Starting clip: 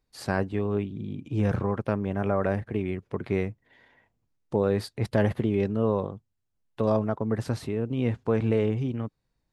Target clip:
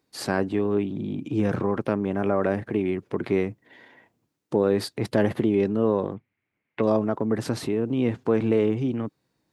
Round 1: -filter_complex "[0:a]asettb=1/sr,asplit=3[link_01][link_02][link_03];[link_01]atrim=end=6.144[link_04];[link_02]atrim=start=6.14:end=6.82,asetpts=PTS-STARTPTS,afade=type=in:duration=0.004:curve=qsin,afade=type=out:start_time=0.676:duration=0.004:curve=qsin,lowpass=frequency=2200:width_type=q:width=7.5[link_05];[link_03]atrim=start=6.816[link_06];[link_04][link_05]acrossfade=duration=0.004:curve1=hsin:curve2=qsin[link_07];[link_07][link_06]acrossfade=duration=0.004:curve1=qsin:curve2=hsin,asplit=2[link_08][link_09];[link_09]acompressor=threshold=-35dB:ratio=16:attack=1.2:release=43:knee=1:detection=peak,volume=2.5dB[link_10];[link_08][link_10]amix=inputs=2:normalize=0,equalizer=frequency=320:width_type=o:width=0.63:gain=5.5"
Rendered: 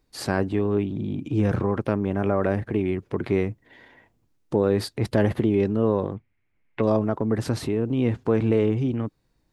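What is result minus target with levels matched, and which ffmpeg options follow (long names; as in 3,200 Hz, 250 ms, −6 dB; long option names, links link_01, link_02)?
125 Hz band +4.0 dB
-filter_complex "[0:a]asettb=1/sr,asplit=3[link_01][link_02][link_03];[link_01]atrim=end=6.144[link_04];[link_02]atrim=start=6.14:end=6.82,asetpts=PTS-STARTPTS,afade=type=in:duration=0.004:curve=qsin,afade=type=out:start_time=0.676:duration=0.004:curve=qsin,lowpass=frequency=2200:width_type=q:width=7.5[link_05];[link_03]atrim=start=6.816[link_06];[link_04][link_05]acrossfade=duration=0.004:curve1=hsin:curve2=qsin[link_07];[link_07][link_06]acrossfade=duration=0.004:curve1=qsin:curve2=hsin,asplit=2[link_08][link_09];[link_09]acompressor=threshold=-35dB:ratio=16:attack=1.2:release=43:knee=1:detection=peak,volume=2.5dB[link_10];[link_08][link_10]amix=inputs=2:normalize=0,highpass=140,equalizer=frequency=320:width_type=o:width=0.63:gain=5.5"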